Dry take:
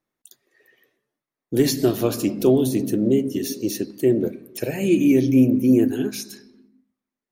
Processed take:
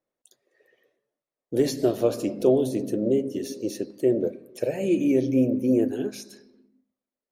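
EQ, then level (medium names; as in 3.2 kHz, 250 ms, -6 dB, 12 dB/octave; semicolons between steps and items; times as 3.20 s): low-pass 11 kHz 12 dB/octave; peaking EQ 550 Hz +12.5 dB 0.83 oct; -8.0 dB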